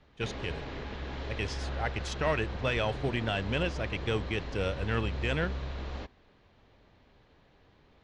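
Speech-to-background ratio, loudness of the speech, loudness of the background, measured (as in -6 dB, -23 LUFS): 5.5 dB, -33.5 LUFS, -39.0 LUFS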